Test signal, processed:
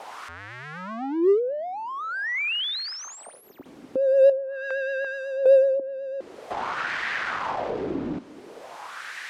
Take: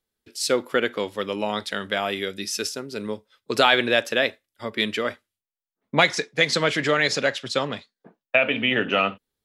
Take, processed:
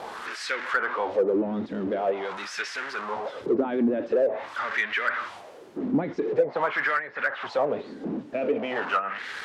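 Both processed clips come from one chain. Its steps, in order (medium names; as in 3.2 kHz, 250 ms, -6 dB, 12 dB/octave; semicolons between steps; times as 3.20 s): jump at every zero crossing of -20 dBFS; wah-wah 0.46 Hz 260–1800 Hz, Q 3.4; vibrato 8 Hz 41 cents; low-pass that closes with the level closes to 600 Hz, closed at -20 dBFS; in parallel at -9.5 dB: hard clipper -25.5 dBFS; on the sum: trim +2 dB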